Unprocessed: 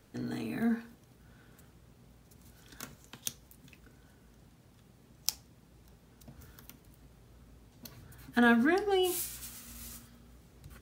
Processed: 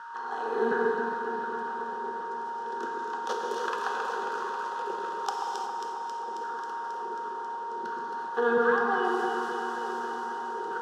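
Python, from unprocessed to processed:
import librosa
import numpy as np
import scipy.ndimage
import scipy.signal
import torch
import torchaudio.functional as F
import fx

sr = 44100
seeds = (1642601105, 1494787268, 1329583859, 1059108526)

y = fx.bin_compress(x, sr, power=0.6)
y = fx.low_shelf(y, sr, hz=280.0, db=-8.0)
y = fx.leveller(y, sr, passes=5, at=(3.29, 5.29))
y = fx.rider(y, sr, range_db=3, speed_s=2.0)
y = fx.filter_lfo_highpass(y, sr, shape='saw_down', hz=1.4, low_hz=320.0, high_hz=1500.0, q=3.7)
y = y + 10.0 ** (-40.0 / 20.0) * np.sin(2.0 * np.pi * 930.0 * np.arange(len(y)) / sr)
y = fx.bandpass_edges(y, sr, low_hz=110.0, high_hz=2300.0)
y = fx.fixed_phaser(y, sr, hz=440.0, stages=8)
y = fx.echo_alternate(y, sr, ms=135, hz=1500.0, feedback_pct=86, wet_db=-5.0)
y = fx.rev_gated(y, sr, seeds[0], gate_ms=390, shape='flat', drr_db=0.0)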